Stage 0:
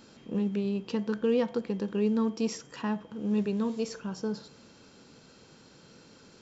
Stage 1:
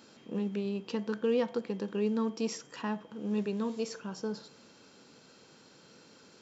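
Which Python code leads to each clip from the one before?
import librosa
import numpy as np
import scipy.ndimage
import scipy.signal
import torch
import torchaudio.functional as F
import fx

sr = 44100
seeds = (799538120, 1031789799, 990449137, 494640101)

y = fx.highpass(x, sr, hz=230.0, slope=6)
y = y * 10.0 ** (-1.0 / 20.0)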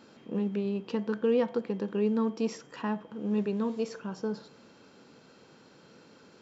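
y = fx.high_shelf(x, sr, hz=3900.0, db=-11.5)
y = y * 10.0 ** (3.0 / 20.0)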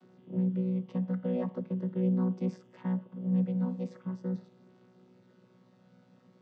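y = fx.chord_vocoder(x, sr, chord='bare fifth', root=47)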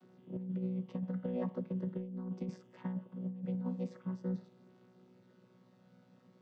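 y = fx.over_compress(x, sr, threshold_db=-31.0, ratio=-0.5)
y = y * 10.0 ** (-5.0 / 20.0)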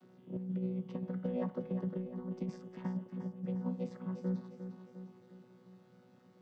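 y = fx.echo_feedback(x, sr, ms=354, feedback_pct=53, wet_db=-9.5)
y = y * 10.0 ** (1.0 / 20.0)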